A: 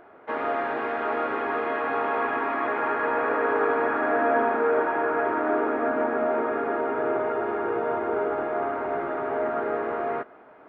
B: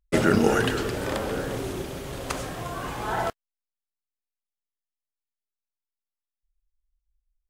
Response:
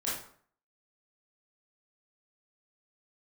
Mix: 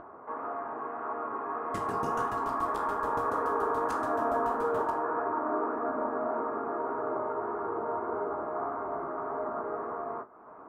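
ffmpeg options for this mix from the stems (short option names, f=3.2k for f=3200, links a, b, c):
-filter_complex "[0:a]acompressor=mode=upward:threshold=-27dB:ratio=2.5,lowpass=f=1.1k:t=q:w=4.7,volume=-4.5dB[a];[1:a]aeval=exprs='val(0)*pow(10,-33*if(lt(mod(7*n/s,1),2*abs(7)/1000),1-mod(7*n/s,1)/(2*abs(7)/1000),(mod(7*n/s,1)-2*abs(7)/1000)/(1-2*abs(7)/1000))/20)':c=same,adelay=1600,volume=-8.5dB,asplit=2[b][c];[c]volume=-8.5dB[d];[2:a]atrim=start_sample=2205[e];[d][e]afir=irnorm=-1:irlink=0[f];[a][b][f]amix=inputs=3:normalize=0,equalizer=f=1.1k:w=0.35:g=-7.5,dynaudnorm=f=750:g=5:m=3.5dB,flanger=delay=10:depth=9.8:regen=-38:speed=1.7:shape=sinusoidal"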